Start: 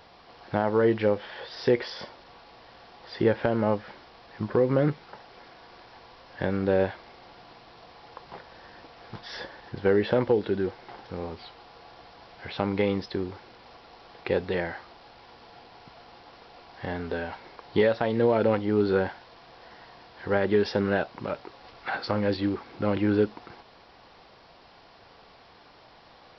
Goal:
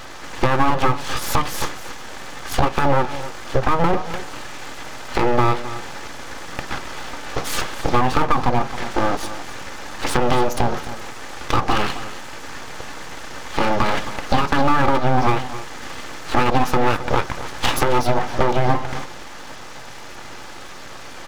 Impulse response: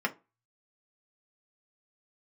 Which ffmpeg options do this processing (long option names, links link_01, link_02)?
-filter_complex "[0:a]lowshelf=frequency=380:gain=7,bandreject=frequency=60:width_type=h:width=6,bandreject=frequency=120:width_type=h:width=6,bandreject=frequency=180:width_type=h:width=6,bandreject=frequency=240:width_type=h:width=6,bandreject=frequency=300:width_type=h:width=6,bandreject=frequency=360:width_type=h:width=6,bandreject=frequency=420:width_type=h:width=6,aecho=1:1:4.3:0.44,acompressor=threshold=-28dB:ratio=8,asetrate=54684,aresample=44100,aeval=exprs='abs(val(0))':channel_layout=same,aecho=1:1:266:0.2,asplit=2[link_01][link_02];[1:a]atrim=start_sample=2205,asetrate=29106,aresample=44100[link_03];[link_02][link_03]afir=irnorm=-1:irlink=0,volume=-17dB[link_04];[link_01][link_04]amix=inputs=2:normalize=0,alimiter=level_in=16dB:limit=-1dB:release=50:level=0:latency=1,volume=-1dB"